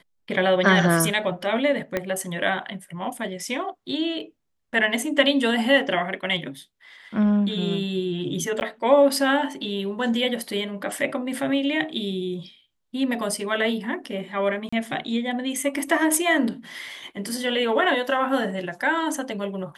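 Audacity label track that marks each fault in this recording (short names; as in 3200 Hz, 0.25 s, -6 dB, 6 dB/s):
1.970000	1.970000	pop -11 dBFS
8.600000	8.610000	gap 9.7 ms
14.690000	14.720000	gap 35 ms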